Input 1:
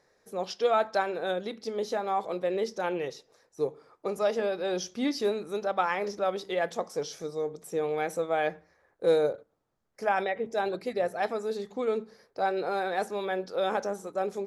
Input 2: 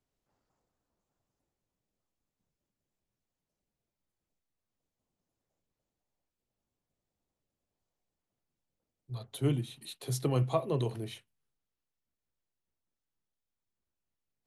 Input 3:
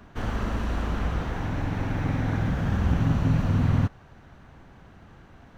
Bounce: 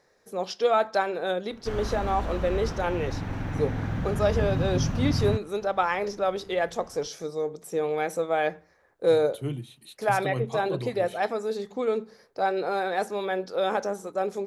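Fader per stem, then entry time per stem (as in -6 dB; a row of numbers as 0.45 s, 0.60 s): +2.5 dB, -2.5 dB, -4.0 dB; 0.00 s, 0.00 s, 1.50 s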